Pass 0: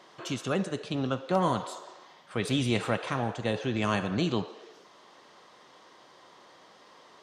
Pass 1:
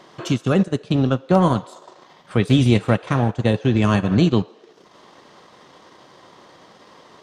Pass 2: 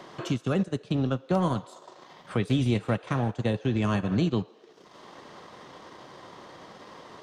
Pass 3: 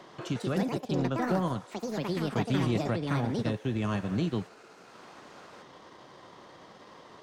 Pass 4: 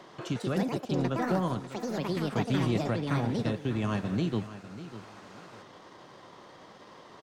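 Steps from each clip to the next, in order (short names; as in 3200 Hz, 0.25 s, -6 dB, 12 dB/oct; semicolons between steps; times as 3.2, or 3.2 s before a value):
low shelf 280 Hz +10.5 dB; transient shaper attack +2 dB, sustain -10 dB; gain +6 dB
three-band squash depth 40%; gain -8.5 dB
echoes that change speed 0.212 s, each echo +5 st, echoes 2; gain -4.5 dB
feedback echo 0.596 s, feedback 27%, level -14 dB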